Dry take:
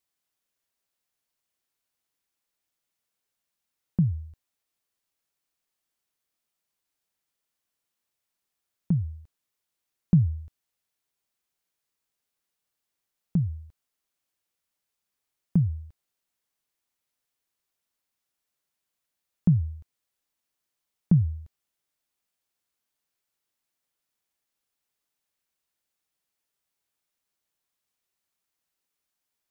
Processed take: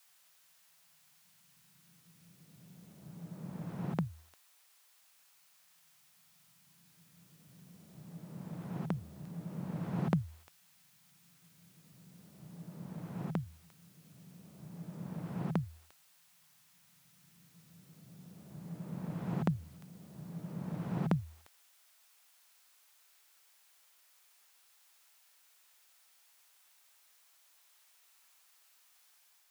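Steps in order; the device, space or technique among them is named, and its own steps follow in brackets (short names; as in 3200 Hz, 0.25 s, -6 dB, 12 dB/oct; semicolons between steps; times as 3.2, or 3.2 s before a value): ghost voice (reverse; reverb RT60 2.8 s, pre-delay 48 ms, DRR 0.5 dB; reverse; HPF 800 Hz 12 dB/oct); gain +15 dB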